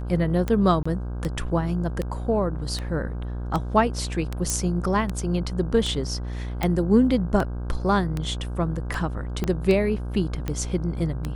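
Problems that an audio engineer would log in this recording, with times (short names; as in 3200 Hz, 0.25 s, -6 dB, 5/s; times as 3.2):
buzz 60 Hz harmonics 27 -30 dBFS
tick 78 rpm -14 dBFS
0.83–0.85 gap 25 ms
4.5 pop
6.63 pop
9.44 pop -13 dBFS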